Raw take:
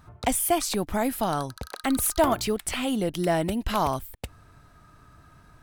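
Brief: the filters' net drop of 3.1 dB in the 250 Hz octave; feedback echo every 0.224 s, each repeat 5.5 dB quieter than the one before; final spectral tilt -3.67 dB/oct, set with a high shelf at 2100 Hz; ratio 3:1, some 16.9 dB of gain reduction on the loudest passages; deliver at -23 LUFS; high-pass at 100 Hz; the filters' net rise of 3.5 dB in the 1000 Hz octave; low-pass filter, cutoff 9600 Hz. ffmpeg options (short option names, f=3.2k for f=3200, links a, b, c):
-af "highpass=100,lowpass=9.6k,equalizer=f=250:t=o:g=-4,equalizer=f=1k:t=o:g=4,highshelf=f=2.1k:g=4.5,acompressor=threshold=-40dB:ratio=3,aecho=1:1:224|448|672|896|1120|1344|1568:0.531|0.281|0.149|0.079|0.0419|0.0222|0.0118,volume=14.5dB"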